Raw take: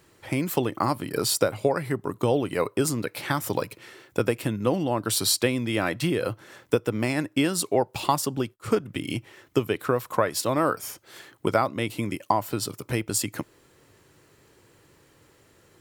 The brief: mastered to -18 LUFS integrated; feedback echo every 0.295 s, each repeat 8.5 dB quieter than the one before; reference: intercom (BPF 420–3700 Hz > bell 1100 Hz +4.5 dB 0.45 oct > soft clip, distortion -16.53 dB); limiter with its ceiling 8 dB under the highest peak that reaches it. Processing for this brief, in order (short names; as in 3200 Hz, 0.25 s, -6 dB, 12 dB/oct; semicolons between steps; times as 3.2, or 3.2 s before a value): limiter -13 dBFS; BPF 420–3700 Hz; bell 1100 Hz +4.5 dB 0.45 oct; feedback echo 0.295 s, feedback 38%, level -8.5 dB; soft clip -18 dBFS; gain +13.5 dB